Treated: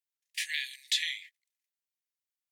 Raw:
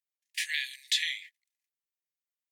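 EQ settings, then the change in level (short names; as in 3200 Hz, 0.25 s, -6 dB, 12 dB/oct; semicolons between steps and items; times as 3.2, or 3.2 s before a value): HPF 1500 Hz; -1.0 dB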